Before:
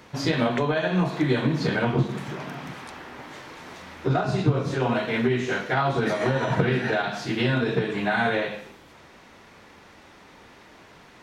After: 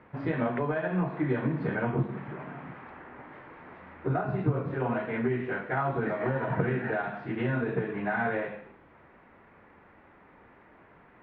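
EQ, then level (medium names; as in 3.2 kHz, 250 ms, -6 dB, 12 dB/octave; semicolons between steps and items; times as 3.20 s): low-pass 2.1 kHz 24 dB/octave; -5.5 dB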